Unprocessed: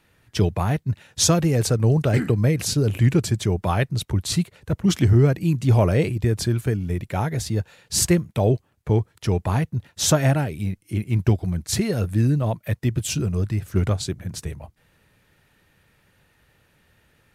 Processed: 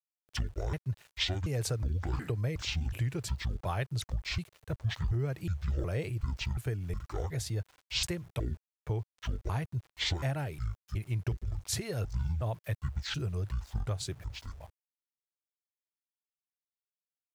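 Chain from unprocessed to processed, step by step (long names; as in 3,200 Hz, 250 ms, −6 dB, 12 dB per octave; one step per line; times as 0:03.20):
pitch shifter gated in a rhythm −10 semitones, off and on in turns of 365 ms
downward compressor, threshold −20 dBFS, peak gain reduction 8.5 dB
dynamic equaliser 130 Hz, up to +3 dB, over −34 dBFS, Q 1.5
centre clipping without the shift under −46 dBFS
parametric band 220 Hz −11.5 dB 0.92 octaves
level −7.5 dB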